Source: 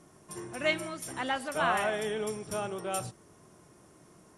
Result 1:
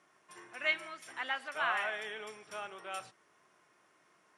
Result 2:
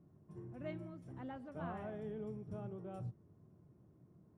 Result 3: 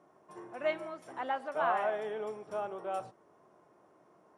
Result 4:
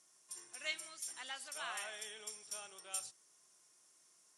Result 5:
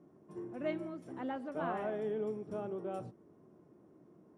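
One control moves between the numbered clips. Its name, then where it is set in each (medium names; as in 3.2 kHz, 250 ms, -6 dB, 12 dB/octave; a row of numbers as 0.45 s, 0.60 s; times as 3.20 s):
band-pass filter, frequency: 2 kHz, 110 Hz, 740 Hz, 6.7 kHz, 290 Hz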